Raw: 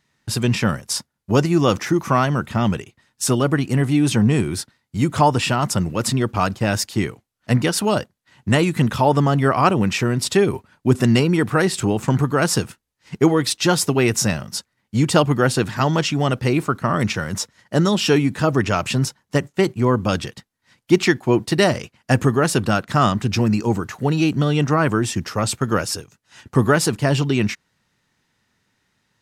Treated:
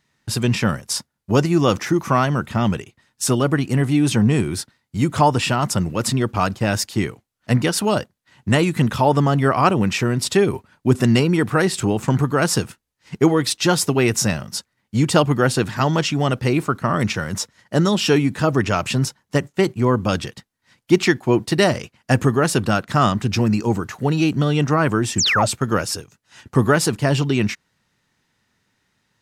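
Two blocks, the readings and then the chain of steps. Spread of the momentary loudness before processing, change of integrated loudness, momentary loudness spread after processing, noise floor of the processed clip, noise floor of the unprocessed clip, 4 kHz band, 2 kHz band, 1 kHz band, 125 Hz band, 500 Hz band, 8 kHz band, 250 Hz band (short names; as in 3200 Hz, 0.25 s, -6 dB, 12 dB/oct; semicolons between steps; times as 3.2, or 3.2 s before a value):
8 LU, 0.0 dB, 8 LU, -74 dBFS, -74 dBFS, +0.5 dB, +0.5 dB, 0.0 dB, 0.0 dB, 0.0 dB, +0.5 dB, 0.0 dB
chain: painted sound fall, 25.18–25.46, 540–8400 Hz -18 dBFS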